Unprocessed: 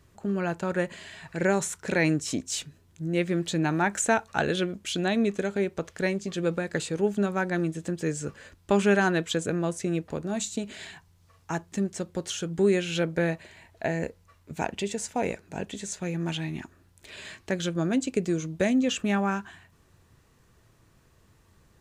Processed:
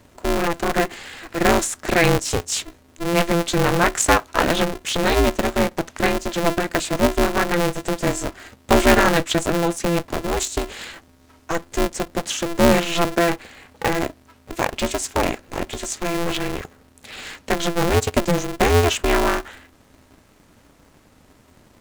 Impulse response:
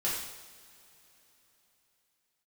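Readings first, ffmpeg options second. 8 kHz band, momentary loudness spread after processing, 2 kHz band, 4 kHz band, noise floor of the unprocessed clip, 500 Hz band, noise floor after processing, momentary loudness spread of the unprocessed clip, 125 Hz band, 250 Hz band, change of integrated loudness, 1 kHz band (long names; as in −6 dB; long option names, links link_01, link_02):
+8.5 dB, 12 LU, +8.0 dB, +10.0 dB, −61 dBFS, +7.5 dB, −54 dBFS, 12 LU, +5.5 dB, +4.5 dB, +7.5 dB, +11.0 dB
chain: -af "aeval=exprs='val(0)*sgn(sin(2*PI*170*n/s))':channel_layout=same,volume=7.5dB"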